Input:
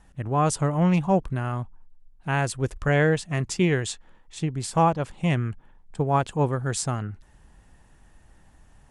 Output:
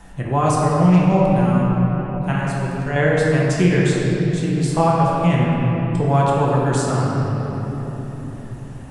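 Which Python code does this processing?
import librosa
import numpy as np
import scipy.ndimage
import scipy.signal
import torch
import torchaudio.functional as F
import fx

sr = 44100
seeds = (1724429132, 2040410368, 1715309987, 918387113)

y = fx.comb_fb(x, sr, f0_hz=130.0, decay_s=1.8, harmonics='all', damping=0.0, mix_pct=70, at=(2.32, 2.96))
y = fx.room_shoebox(y, sr, seeds[0], volume_m3=180.0, walls='hard', distance_m=0.81)
y = fx.band_squash(y, sr, depth_pct=40)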